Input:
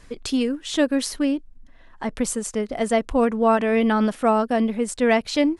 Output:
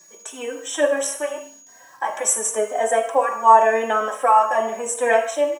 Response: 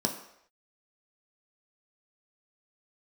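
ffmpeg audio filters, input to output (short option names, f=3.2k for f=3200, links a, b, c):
-filter_complex "[0:a]asuperstop=centerf=4600:order=4:qfactor=1.3,dynaudnorm=f=160:g=5:m=12.5dB,highpass=f=600:w=0.5412,highpass=f=600:w=1.3066,aecho=1:1:77|154|231|308:0.15|0.0748|0.0374|0.0187,acrusher=bits=8:mix=0:aa=0.000001,aeval=exprs='val(0)+0.00631*sin(2*PI*6700*n/s)':c=same,highshelf=f=6.5k:g=8[a];[1:a]atrim=start_sample=2205,afade=t=out:st=0.24:d=0.01,atrim=end_sample=11025[b];[a][b]afir=irnorm=-1:irlink=0,asplit=2[c][d];[d]adelay=3.1,afreqshift=0.89[e];[c][e]amix=inputs=2:normalize=1,volume=-5.5dB"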